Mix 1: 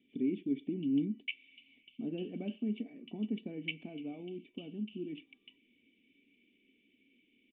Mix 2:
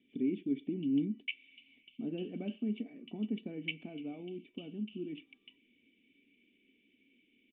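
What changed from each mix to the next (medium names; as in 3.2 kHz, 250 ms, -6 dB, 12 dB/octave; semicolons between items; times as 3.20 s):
master: add peaking EQ 1.4 kHz +6 dB 0.42 oct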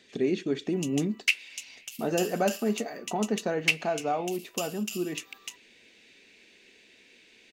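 master: remove cascade formant filter i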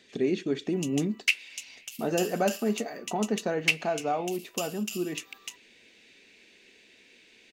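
no change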